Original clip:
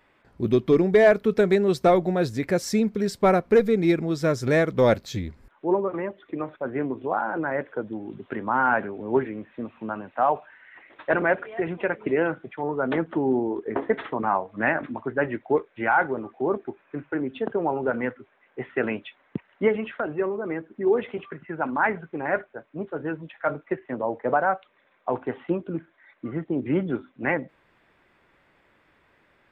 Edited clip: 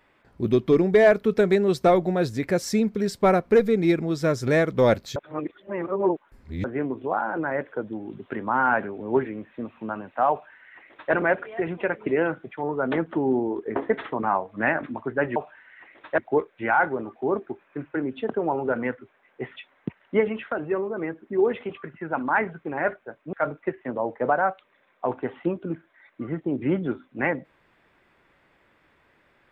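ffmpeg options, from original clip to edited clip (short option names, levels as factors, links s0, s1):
-filter_complex "[0:a]asplit=7[s0][s1][s2][s3][s4][s5][s6];[s0]atrim=end=5.162[s7];[s1]atrim=start=5.158:end=6.642,asetpts=PTS-STARTPTS,areverse[s8];[s2]atrim=start=6.638:end=15.362[s9];[s3]atrim=start=10.308:end=11.132[s10];[s4]atrim=start=15.358:end=18.742[s11];[s5]atrim=start=19.038:end=22.812[s12];[s6]atrim=start=23.368[s13];[s7][s8]acrossfade=d=0.004:c1=hsin:c2=hsin[s14];[s14][s9]acrossfade=d=0.004:c1=hsin:c2=hsin[s15];[s15][s10]acrossfade=d=0.004:c1=hsin:c2=hsin[s16];[s16][s11]acrossfade=d=0.004:c1=hsin:c2=hsin[s17];[s17][s12]acrossfade=d=0.004:c1=hsin:c2=hsin[s18];[s18][s13]acrossfade=d=0.004:c1=hsin:c2=hsin"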